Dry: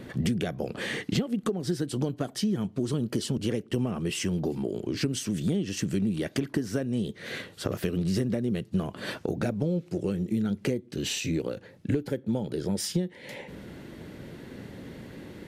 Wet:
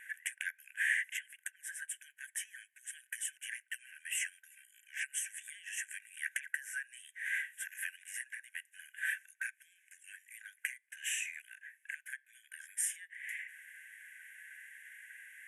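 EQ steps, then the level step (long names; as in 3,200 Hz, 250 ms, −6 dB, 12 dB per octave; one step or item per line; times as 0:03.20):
linear-phase brick-wall band-pass 1,500–12,000 Hz
Butterworth band-reject 4,400 Hz, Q 0.59
+7.5 dB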